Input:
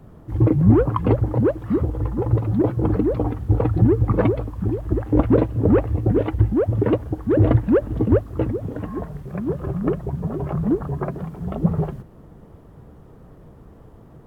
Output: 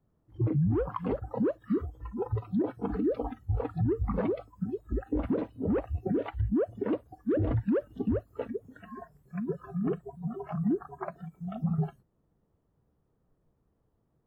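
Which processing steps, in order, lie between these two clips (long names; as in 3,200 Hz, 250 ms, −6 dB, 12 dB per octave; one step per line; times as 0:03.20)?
noise reduction from a noise print of the clip's start 22 dB
dynamic equaliser 120 Hz, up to +5 dB, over −29 dBFS, Q 0.89
brickwall limiter −15 dBFS, peak gain reduction 15 dB
level −6 dB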